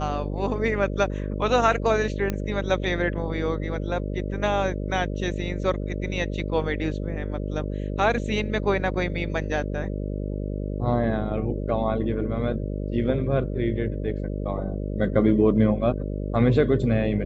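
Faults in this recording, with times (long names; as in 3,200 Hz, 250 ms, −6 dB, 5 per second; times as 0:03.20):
mains buzz 50 Hz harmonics 12 −29 dBFS
0:02.30: click −13 dBFS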